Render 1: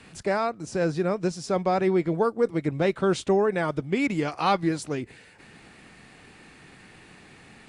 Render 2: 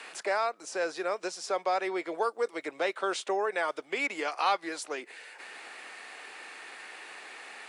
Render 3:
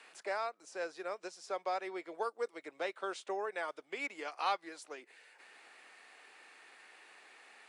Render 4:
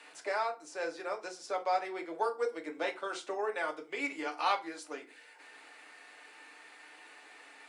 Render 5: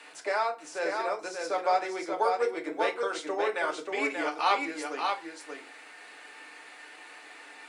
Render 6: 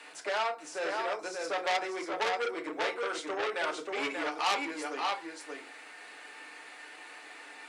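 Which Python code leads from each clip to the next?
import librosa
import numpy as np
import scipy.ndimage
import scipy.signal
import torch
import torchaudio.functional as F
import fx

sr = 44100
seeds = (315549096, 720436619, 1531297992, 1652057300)

y1 = scipy.signal.sosfilt(scipy.signal.bessel(4, 670.0, 'highpass', norm='mag', fs=sr, output='sos'), x)
y1 = fx.band_squash(y1, sr, depth_pct=40)
y2 = fx.upward_expand(y1, sr, threshold_db=-37.0, expansion=1.5)
y2 = y2 * 10.0 ** (-6.0 / 20.0)
y3 = fx.rev_fdn(y2, sr, rt60_s=0.31, lf_ratio=1.45, hf_ratio=0.75, size_ms=20.0, drr_db=2.0)
y3 = y3 * 10.0 ** (2.0 / 20.0)
y4 = y3 + 10.0 ** (-4.5 / 20.0) * np.pad(y3, (int(584 * sr / 1000.0), 0))[:len(y3)]
y4 = y4 * 10.0 ** (4.5 / 20.0)
y5 = fx.transformer_sat(y4, sr, knee_hz=3900.0)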